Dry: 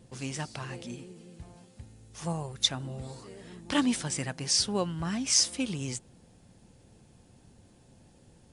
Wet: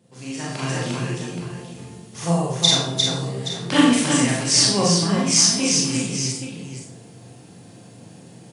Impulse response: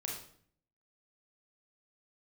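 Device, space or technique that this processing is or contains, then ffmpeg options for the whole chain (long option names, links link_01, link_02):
far laptop microphone: -filter_complex "[0:a]aecho=1:1:41|352|824:0.668|0.668|0.237[link_01];[1:a]atrim=start_sample=2205[link_02];[link_01][link_02]afir=irnorm=-1:irlink=0,highpass=frequency=120:width=0.5412,highpass=frequency=120:width=1.3066,dynaudnorm=framelen=130:gausssize=9:maxgain=11.5dB"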